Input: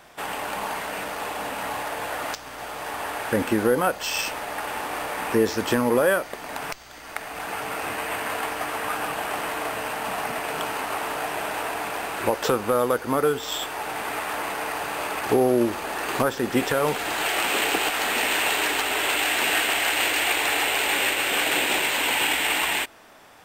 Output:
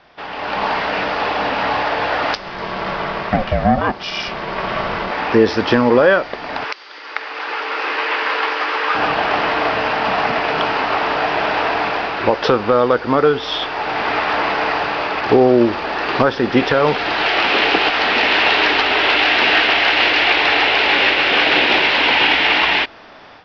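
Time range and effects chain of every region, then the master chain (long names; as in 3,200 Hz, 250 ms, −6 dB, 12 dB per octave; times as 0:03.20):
0:02.37–0:05.11: low shelf with overshoot 240 Hz −10 dB, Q 3 + comb filter 4.5 ms, depth 35% + ring modulation 260 Hz
0:06.64–0:08.95: high-pass filter 360 Hz 24 dB per octave + parametric band 680 Hz −13 dB 0.33 octaves
whole clip: Butterworth low-pass 5,300 Hz 72 dB per octave; automatic gain control gain up to 11.5 dB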